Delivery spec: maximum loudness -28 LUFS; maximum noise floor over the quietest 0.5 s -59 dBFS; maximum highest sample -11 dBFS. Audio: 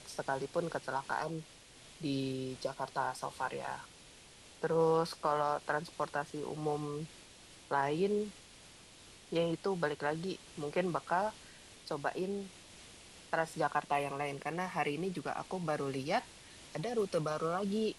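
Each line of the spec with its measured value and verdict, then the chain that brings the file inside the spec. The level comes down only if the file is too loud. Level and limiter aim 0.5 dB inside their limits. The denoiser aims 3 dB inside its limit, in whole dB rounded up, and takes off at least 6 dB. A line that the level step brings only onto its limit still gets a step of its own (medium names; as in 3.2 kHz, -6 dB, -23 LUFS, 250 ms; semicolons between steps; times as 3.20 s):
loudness -36.0 LUFS: pass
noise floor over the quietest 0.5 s -57 dBFS: fail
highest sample -18.0 dBFS: pass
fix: noise reduction 6 dB, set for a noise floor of -57 dBFS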